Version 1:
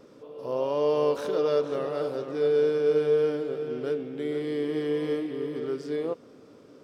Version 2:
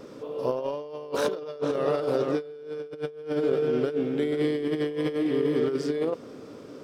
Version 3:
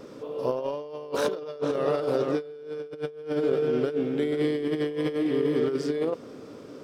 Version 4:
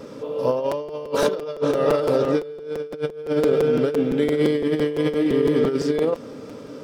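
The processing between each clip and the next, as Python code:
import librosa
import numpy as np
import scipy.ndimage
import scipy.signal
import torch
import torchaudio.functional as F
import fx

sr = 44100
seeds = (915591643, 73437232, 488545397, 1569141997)

y1 = fx.over_compress(x, sr, threshold_db=-31.0, ratio=-0.5)
y1 = F.gain(torch.from_numpy(y1), 4.0).numpy()
y2 = y1
y3 = fx.notch_comb(y2, sr, f0_hz=360.0)
y3 = fx.buffer_crackle(y3, sr, first_s=0.71, period_s=0.17, block=256, kind='repeat')
y3 = F.gain(torch.from_numpy(y3), 7.0).numpy()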